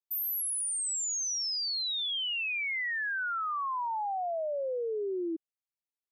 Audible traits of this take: noise floor -96 dBFS; spectral tilt -2.5 dB/octave

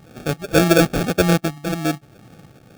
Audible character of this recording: phasing stages 8, 1.8 Hz, lowest notch 570–2800 Hz; aliases and images of a low sample rate 1 kHz, jitter 0%

